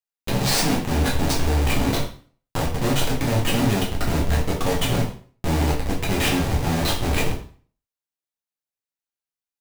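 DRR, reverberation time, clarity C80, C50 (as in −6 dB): −3.5 dB, 0.45 s, 11.5 dB, 7.0 dB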